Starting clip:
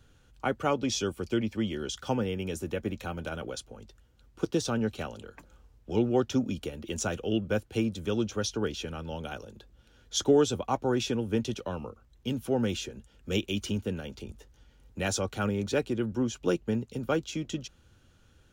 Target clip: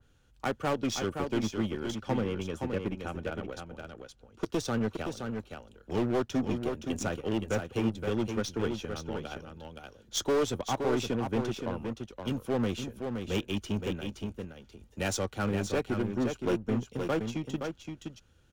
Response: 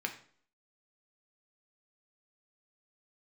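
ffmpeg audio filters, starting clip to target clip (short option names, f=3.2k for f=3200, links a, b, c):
-filter_complex "[0:a]asettb=1/sr,asplit=3[a][b][c];[a]atrim=end=1.964[d];[b]atrim=start=1.96:end=4.44,asetpts=PTS-STARTPTS,afade=t=in:d=0.004:c=qsin,afade=t=out:st=2.476:d=0.004:c=qsin,highshelf=f=11k:g=-11[e];[c]atrim=start=4.436[f];[d][e]acrossfade=d=0.004:c1=hsin:c2=qsin[g];[g][f]acrossfade=d=0.004:c1=qsin:c2=hsin,aeval=exprs='0.0596*(cos(1*acos(clip(val(0)/0.0596,-1,1)))-cos(1*PI/2))+0.00841*(cos(3*acos(clip(val(0)/0.0596,-1,1)))-cos(3*PI/2))+0.00188*(cos(6*acos(clip(val(0)/0.0596,-1,1)))-cos(6*PI/2))':c=same,aecho=1:1:520:0.501,adynamicequalizer=threshold=0.002:dfrequency=2900:dqfactor=0.7:tfrequency=2900:tqfactor=0.7:attack=5:release=100:ratio=0.375:range=2.5:mode=cutabove:tftype=highshelf"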